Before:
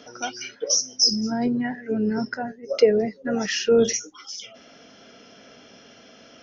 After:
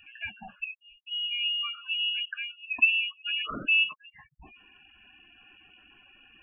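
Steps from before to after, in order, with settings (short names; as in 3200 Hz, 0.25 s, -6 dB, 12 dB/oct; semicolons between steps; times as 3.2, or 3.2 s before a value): spectral gate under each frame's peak -15 dB strong; inverted band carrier 3100 Hz; gain -6 dB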